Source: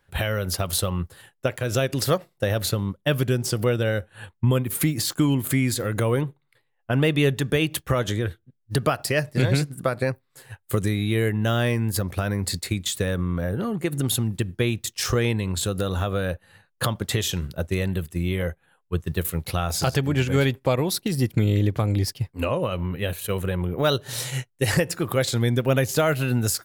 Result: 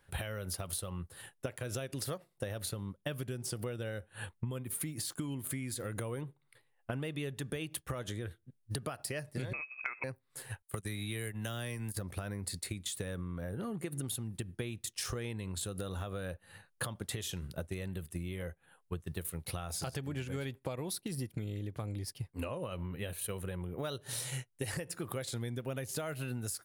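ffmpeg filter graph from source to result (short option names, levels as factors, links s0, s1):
-filter_complex "[0:a]asettb=1/sr,asplit=3[s0][s1][s2];[s0]atrim=end=9.534[s3];[s1]atrim=start=9.53:end=10.04,asetpts=PTS-STARTPTS,afade=t=in:d=0.004:c=qsin,afade=t=out:st=0.506:d=0.004:c=qsin,tiltshelf=f=660:g=-3.5,lowpass=f=2300:t=q:w=0.5098,lowpass=f=2300:t=q:w=0.6013,lowpass=f=2300:t=q:w=0.9,lowpass=f=2300:t=q:w=2.563,afreqshift=-2700[s4];[s2]atrim=start=10.036[s5];[s3][s4]acrossfade=d=0.004:c1=hsin:c2=qsin[s6];[s6][s5]acrossfade=d=0.004:c1=qsin:c2=hsin,asettb=1/sr,asplit=3[s7][s8][s9];[s7]atrim=end=10.624[s10];[s8]atrim=start=10.62:end=11.97,asetpts=PTS-STARTPTS,afade=t=in:d=0.004:c=qsin,afade=t=out:st=1.346:d=0.004:c=qsin,highshelf=f=2800:g=11.5,acrossover=split=170|660|2600[s11][s12][s13][s14];[s11]acompressor=threshold=0.0398:ratio=3[s15];[s12]acompressor=threshold=0.0251:ratio=3[s16];[s13]acompressor=threshold=0.0282:ratio=3[s17];[s14]acompressor=threshold=0.0158:ratio=3[s18];[s15][s16][s17][s18]amix=inputs=4:normalize=0,agate=range=0.0794:threshold=0.0398:ratio=16:release=100:detection=peak[s19];[s9]atrim=start=11.966[s20];[s10][s19]acrossfade=d=0.004:c1=hsin:c2=qsin[s21];[s21][s20]acrossfade=d=0.004:c1=qsin:c2=hsin,equalizer=f=9600:t=o:w=0.25:g=9.5,acompressor=threshold=0.02:ratio=10,volume=0.841"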